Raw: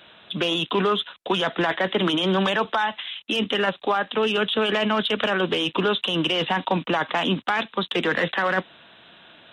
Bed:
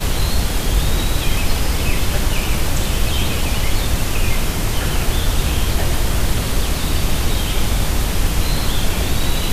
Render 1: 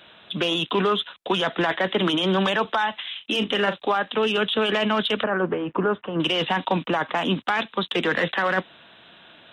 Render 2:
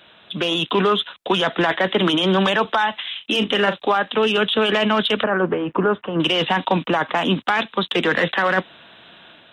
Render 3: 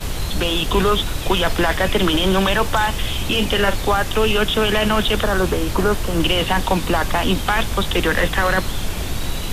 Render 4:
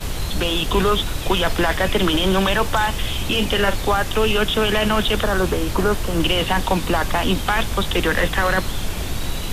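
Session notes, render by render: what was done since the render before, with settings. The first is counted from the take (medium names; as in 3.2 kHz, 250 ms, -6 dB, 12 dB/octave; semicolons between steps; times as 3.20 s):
3.07–3.78 s: doubling 39 ms -11 dB; 5.23–6.20 s: low-pass 1.7 kHz 24 dB/octave; 6.86–7.29 s: dynamic bell 3.8 kHz, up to -5 dB, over -39 dBFS, Q 0.94
level rider gain up to 4 dB
add bed -6 dB
trim -1 dB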